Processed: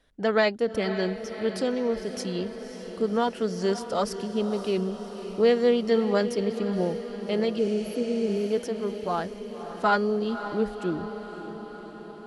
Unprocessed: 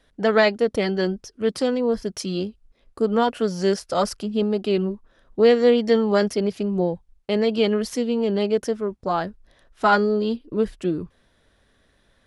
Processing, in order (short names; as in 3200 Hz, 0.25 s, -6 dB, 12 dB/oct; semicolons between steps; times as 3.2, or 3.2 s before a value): diffused feedback echo 0.554 s, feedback 65%, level -11 dB; spectral repair 7.61–8.46, 560–10000 Hz after; gain -5 dB